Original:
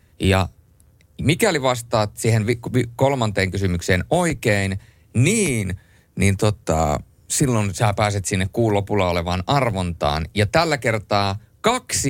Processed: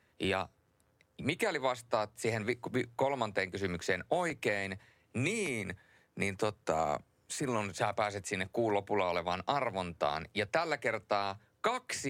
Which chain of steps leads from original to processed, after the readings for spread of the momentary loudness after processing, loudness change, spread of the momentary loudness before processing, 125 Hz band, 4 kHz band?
6 LU, −14.0 dB, 5 LU, −22.0 dB, −14.5 dB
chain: high-pass filter 800 Hz 6 dB per octave
downward compressor, threshold −23 dBFS, peak gain reduction 9 dB
low-pass filter 1,800 Hz 6 dB per octave
level −2.5 dB

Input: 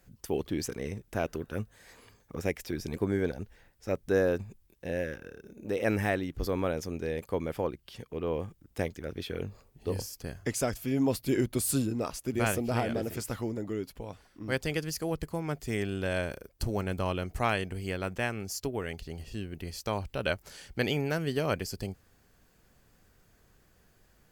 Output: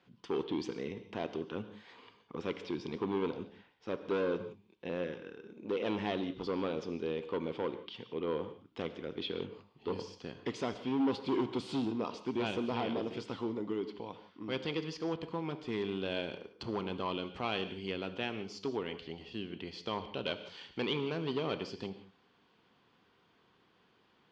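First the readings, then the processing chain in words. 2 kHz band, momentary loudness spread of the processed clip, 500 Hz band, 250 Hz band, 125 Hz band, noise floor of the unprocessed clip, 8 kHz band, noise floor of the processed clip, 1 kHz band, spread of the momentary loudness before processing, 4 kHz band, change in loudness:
−7.5 dB, 11 LU, −4.0 dB, −3.5 dB, −10.5 dB, −65 dBFS, −20.5 dB, −69 dBFS, −3.5 dB, 12 LU, 0.0 dB, −4.5 dB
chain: dynamic equaliser 1,500 Hz, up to −6 dB, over −47 dBFS, Q 1
hard clipping −27 dBFS, distortion −11 dB
loudspeaker in its box 210–4,100 Hz, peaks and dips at 610 Hz −7 dB, 1,000 Hz +6 dB, 1,700 Hz −5 dB, 3,200 Hz +6 dB
reverb whose tail is shaped and stops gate 200 ms flat, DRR 10 dB

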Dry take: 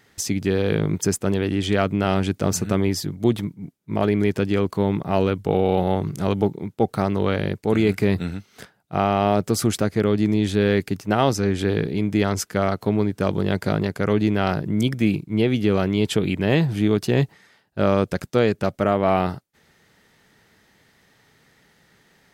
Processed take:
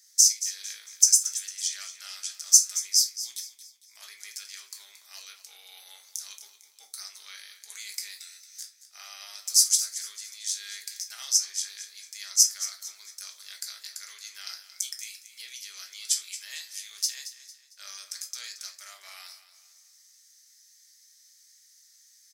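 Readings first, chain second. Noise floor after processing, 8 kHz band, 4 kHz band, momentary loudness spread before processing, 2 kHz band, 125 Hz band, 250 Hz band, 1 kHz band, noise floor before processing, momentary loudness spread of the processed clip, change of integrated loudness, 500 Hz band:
−59 dBFS, +12.0 dB, +3.0 dB, 4 LU, −15.5 dB, below −40 dB, below −40 dB, −30.0 dB, −60 dBFS, 24 LU, −3.0 dB, below −40 dB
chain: Chebyshev high-pass filter 2,100 Hz, order 3
high shelf with overshoot 4,000 Hz +13.5 dB, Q 3
on a send: repeating echo 226 ms, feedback 39%, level −13.5 dB
on the sum: rectangular room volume 190 cubic metres, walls furnished, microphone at 1.3 metres
level −9 dB

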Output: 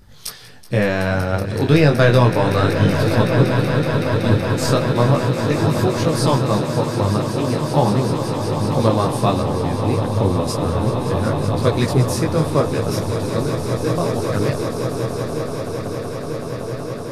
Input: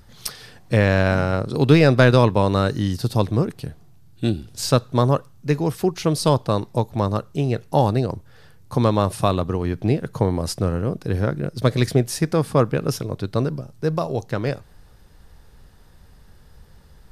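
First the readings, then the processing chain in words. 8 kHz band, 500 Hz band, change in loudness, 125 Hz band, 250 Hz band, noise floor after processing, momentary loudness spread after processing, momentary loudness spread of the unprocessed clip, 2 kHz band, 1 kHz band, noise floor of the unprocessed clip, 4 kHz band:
+3.0 dB, +3.0 dB, +2.5 dB, +3.0 dB, +3.0 dB, −28 dBFS, 9 LU, 10 LU, +3.0 dB, +3.5 dB, −49 dBFS, +3.0 dB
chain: on a send: echo that builds up and dies away 188 ms, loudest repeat 8, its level −12 dB
on the sum: micro pitch shift up and down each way 12 cents
level +4 dB

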